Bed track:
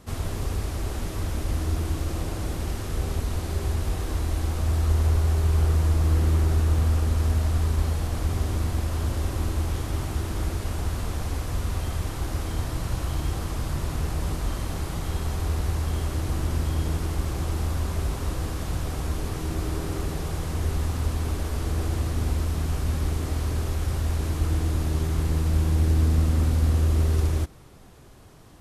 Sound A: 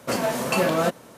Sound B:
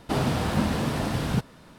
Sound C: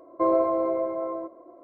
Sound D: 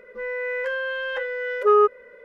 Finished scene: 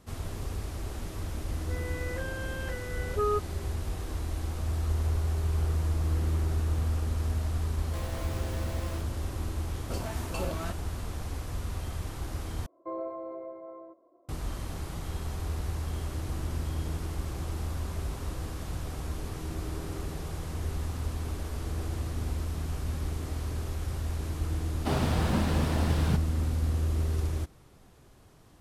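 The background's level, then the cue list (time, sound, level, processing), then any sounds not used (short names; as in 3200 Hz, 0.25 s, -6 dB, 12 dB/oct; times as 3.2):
bed track -7 dB
1.52 add D -12 dB
7.74 add C -15.5 dB + Schmitt trigger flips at -38.5 dBFS
9.82 add A -13 dB + LFO notch square 2.1 Hz 500–1900 Hz
12.66 replace with C -14.5 dB
24.76 add B -4 dB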